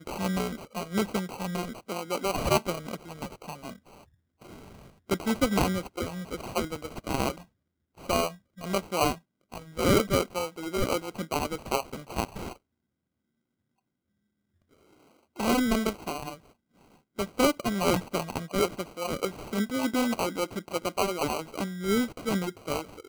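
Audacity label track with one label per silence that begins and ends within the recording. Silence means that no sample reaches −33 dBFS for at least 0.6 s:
3.690000	5.100000	silence
7.380000	8.090000	silence
12.520000	15.390000	silence
16.340000	17.190000	silence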